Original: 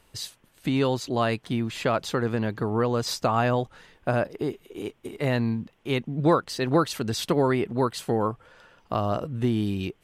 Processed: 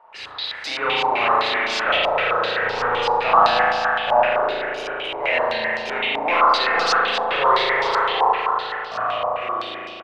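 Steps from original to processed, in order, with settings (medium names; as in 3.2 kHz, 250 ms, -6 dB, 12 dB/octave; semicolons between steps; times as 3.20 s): fade out at the end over 2.92 s; gate with hold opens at -49 dBFS; high-pass 590 Hz 24 dB/octave; 4.29–4.85 s: level held to a coarse grid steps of 16 dB; power-law waveshaper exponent 0.5; 1.91–2.89 s: hard clipper -25 dBFS, distortion -16 dB; on a send: delay 449 ms -15 dB; on the sum: spring tank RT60 3.1 s, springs 36 ms, chirp 35 ms, DRR -8 dB; step-sequenced low-pass 7.8 Hz 910–5200 Hz; trim -7 dB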